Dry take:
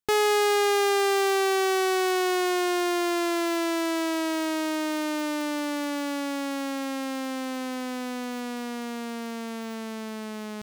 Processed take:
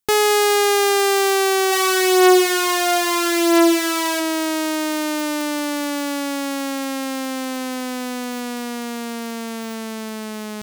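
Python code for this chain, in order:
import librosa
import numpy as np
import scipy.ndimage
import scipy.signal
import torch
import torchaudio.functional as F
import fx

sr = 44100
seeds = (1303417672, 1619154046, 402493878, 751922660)

y = fx.high_shelf(x, sr, hz=5600.0, db=7.0)
y = fx.room_flutter(y, sr, wall_m=5.6, rt60_s=0.64, at=(1.71, 4.19), fade=0.02)
y = y * librosa.db_to_amplitude(5.5)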